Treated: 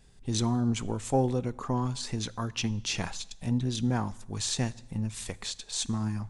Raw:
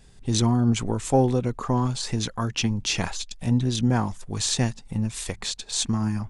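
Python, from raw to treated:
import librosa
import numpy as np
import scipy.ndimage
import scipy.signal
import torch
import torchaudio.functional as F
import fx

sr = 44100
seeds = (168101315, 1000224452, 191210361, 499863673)

y = fx.rev_plate(x, sr, seeds[0], rt60_s=0.99, hf_ratio=0.95, predelay_ms=0, drr_db=19.0)
y = y * 10.0 ** (-6.0 / 20.0)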